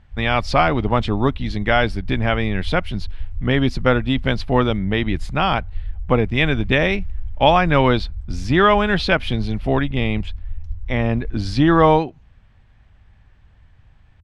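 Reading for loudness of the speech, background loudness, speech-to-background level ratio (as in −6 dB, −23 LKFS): −19.0 LKFS, −34.0 LKFS, 15.0 dB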